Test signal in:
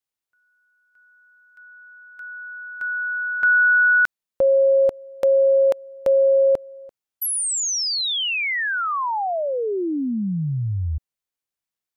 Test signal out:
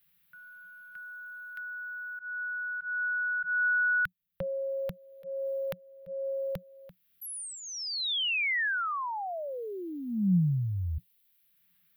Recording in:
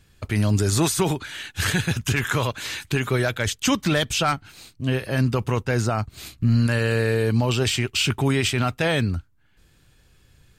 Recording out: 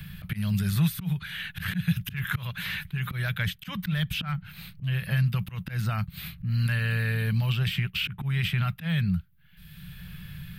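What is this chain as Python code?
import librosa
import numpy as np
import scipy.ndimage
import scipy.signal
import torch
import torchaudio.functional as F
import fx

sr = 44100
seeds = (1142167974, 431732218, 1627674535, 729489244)

y = fx.curve_eq(x, sr, hz=(110.0, 180.0, 260.0, 420.0, 900.0, 1700.0, 3500.0, 7100.0, 13000.0), db=(0, 14, -20, -17, -10, 0, -1, -19, 6))
y = fx.auto_swell(y, sr, attack_ms=237.0)
y = fx.band_squash(y, sr, depth_pct=70)
y = y * 10.0 ** (-3.5 / 20.0)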